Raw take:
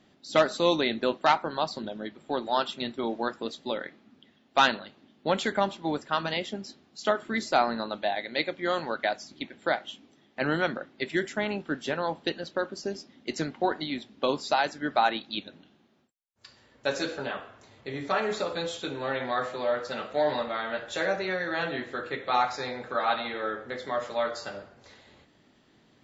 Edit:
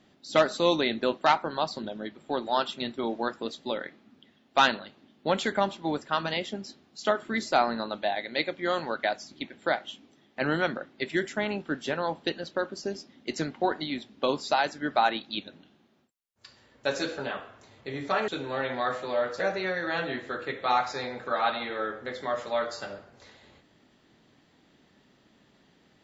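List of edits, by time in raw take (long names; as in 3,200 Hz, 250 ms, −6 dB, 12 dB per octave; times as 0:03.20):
0:18.28–0:18.79: remove
0:19.91–0:21.04: remove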